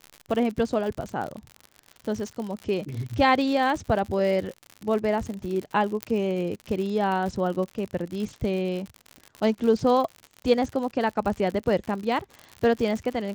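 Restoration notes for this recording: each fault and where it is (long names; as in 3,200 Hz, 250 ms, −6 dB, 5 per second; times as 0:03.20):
surface crackle 76 per second −31 dBFS
0:06.03: click −11 dBFS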